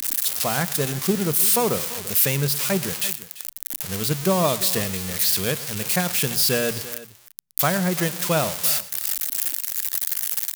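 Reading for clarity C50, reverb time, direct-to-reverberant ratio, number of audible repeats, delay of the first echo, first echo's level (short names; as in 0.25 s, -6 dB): none, none, none, 2, 0.119 s, -18.5 dB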